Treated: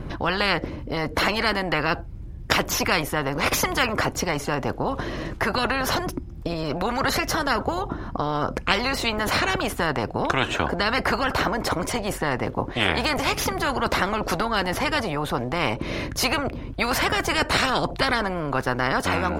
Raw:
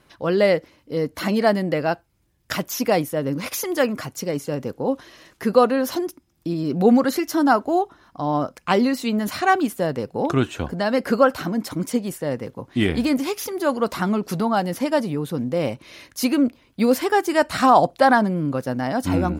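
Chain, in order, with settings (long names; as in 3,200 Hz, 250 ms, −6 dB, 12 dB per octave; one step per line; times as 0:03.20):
spectral tilt −4.5 dB per octave
every bin compressed towards the loudest bin 10 to 1
level −3 dB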